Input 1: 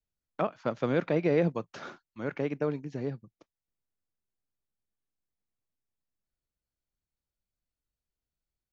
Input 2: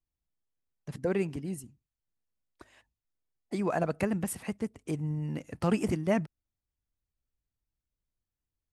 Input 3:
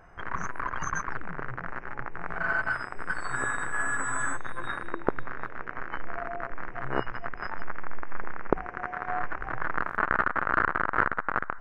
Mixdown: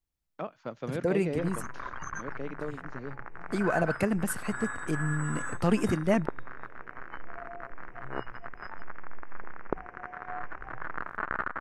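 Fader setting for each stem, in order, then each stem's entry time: −7.5, +2.0, −7.0 decibels; 0.00, 0.00, 1.20 seconds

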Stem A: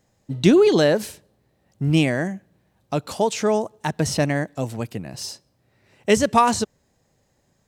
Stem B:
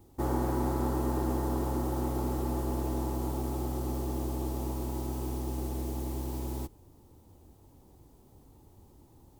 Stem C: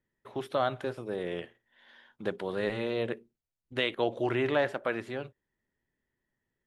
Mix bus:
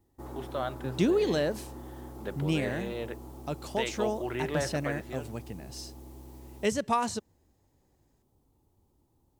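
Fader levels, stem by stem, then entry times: −11.0, −12.5, −5.0 decibels; 0.55, 0.00, 0.00 seconds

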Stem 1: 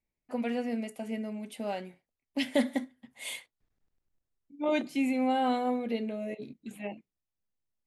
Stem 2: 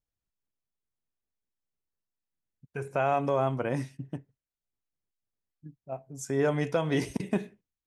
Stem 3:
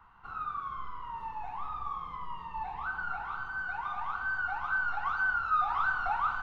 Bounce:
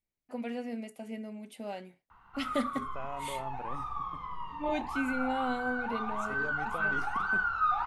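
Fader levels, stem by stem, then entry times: −5.0, −15.0, 0.0 decibels; 0.00, 0.00, 2.10 seconds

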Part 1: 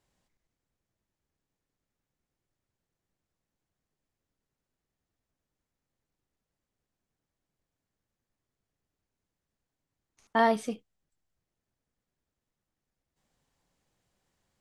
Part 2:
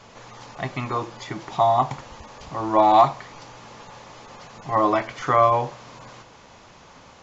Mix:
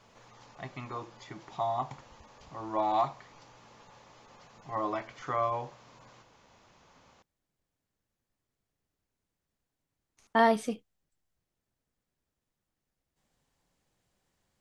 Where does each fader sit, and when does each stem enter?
+0.5, −13.0 decibels; 0.00, 0.00 seconds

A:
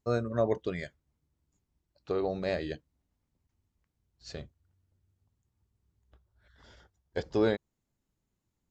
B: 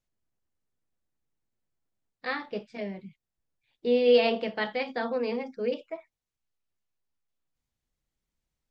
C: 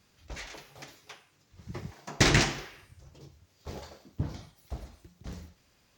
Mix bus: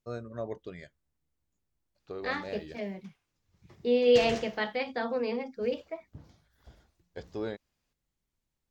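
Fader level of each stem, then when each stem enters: −9.0, −1.5, −16.5 decibels; 0.00, 0.00, 1.95 seconds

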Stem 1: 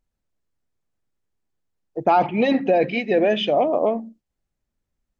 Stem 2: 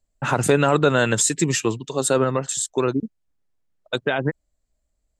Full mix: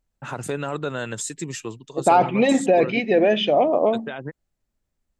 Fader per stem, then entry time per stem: +1.0, −10.5 decibels; 0.00, 0.00 seconds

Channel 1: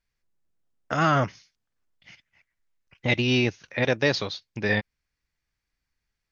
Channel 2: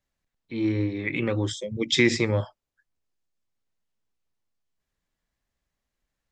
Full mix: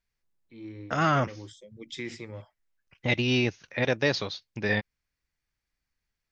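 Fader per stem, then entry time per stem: −2.5, −17.0 decibels; 0.00, 0.00 seconds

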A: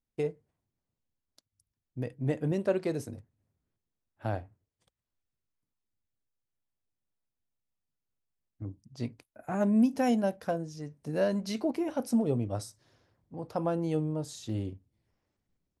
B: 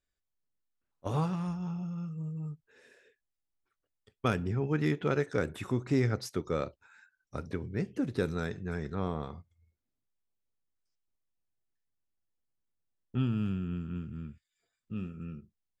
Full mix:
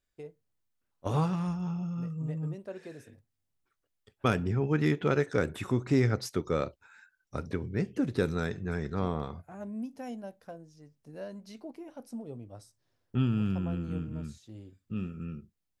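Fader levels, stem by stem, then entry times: −13.5, +2.5 decibels; 0.00, 0.00 seconds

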